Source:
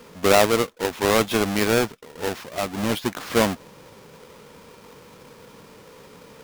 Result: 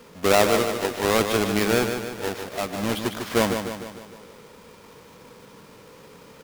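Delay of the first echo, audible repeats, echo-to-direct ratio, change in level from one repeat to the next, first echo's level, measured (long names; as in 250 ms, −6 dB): 150 ms, 6, −5.5 dB, −5.5 dB, −7.0 dB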